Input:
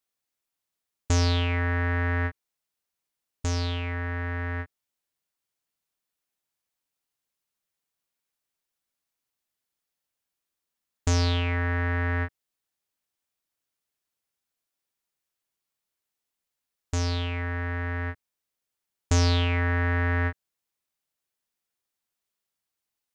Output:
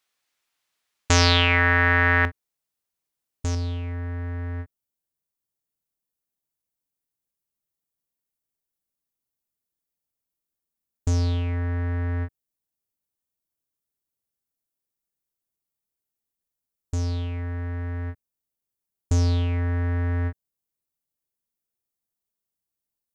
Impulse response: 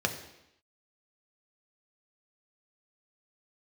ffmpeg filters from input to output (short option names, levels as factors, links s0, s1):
-af "asetnsamples=n=441:p=0,asendcmd='2.25 equalizer g -4.5;3.55 equalizer g -12.5',equalizer=f=2200:w=0.3:g=10.5,volume=1.26"